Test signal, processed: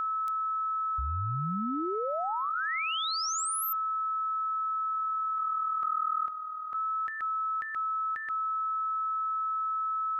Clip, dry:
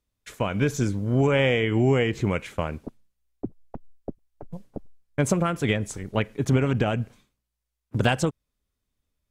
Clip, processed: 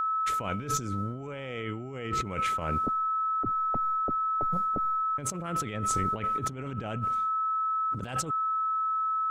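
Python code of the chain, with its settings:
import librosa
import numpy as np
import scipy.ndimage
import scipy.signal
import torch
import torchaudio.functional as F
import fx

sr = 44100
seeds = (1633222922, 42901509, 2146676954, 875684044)

y = x + 10.0 ** (-30.0 / 20.0) * np.sin(2.0 * np.pi * 1300.0 * np.arange(len(x)) / sr)
y = fx.over_compress(y, sr, threshold_db=-31.0, ratio=-1.0)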